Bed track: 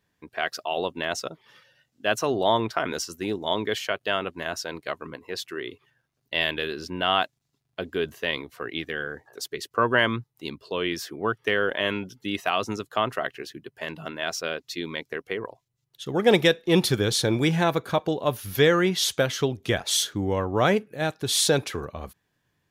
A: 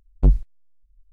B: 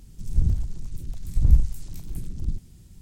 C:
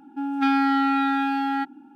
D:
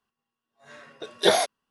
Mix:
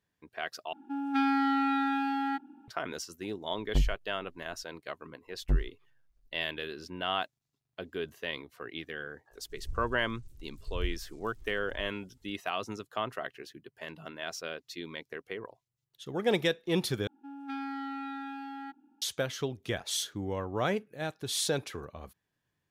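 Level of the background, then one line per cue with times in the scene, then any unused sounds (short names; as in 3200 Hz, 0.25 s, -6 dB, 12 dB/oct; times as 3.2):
bed track -9 dB
0.73 replace with C -6.5 dB
3.52 add A -5 dB + compressor, threshold -17 dBFS
5.26 add A -11.5 dB
9.31 add B -17.5 dB + bell 190 Hz -11.5 dB 0.89 oct
17.07 replace with C -17 dB
not used: D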